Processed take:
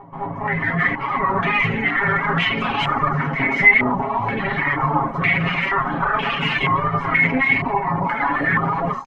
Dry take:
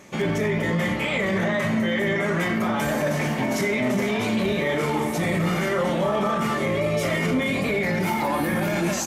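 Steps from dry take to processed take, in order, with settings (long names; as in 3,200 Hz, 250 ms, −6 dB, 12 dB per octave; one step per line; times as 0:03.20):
lower of the sound and its delayed copy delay 0.97 ms
reverb reduction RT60 2 s
comb filter 7.3 ms, depth 99%
automatic gain control gain up to 16.5 dB
backwards echo 224 ms −16 dB
low-pass on a step sequencer 2.1 Hz 980–2,800 Hz
level −9.5 dB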